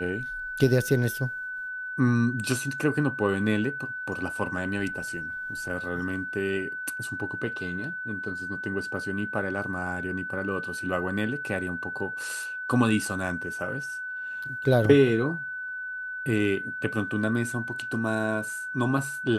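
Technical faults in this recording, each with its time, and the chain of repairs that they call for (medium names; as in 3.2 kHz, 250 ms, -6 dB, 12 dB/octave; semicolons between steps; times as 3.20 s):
whine 1.5 kHz -32 dBFS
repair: band-stop 1.5 kHz, Q 30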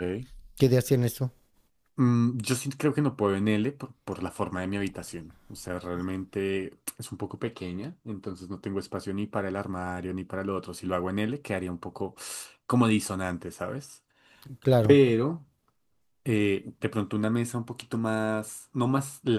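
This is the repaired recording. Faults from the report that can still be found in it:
nothing left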